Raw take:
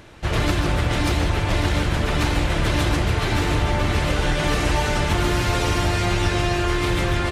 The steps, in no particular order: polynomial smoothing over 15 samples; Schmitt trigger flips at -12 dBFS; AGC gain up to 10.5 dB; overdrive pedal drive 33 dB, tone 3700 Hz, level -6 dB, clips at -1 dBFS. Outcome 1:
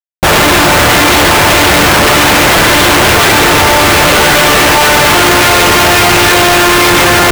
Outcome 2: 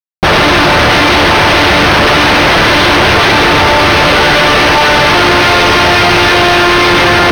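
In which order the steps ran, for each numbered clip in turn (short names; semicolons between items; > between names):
polynomial smoothing > overdrive pedal > AGC > Schmitt trigger; overdrive pedal > AGC > Schmitt trigger > polynomial smoothing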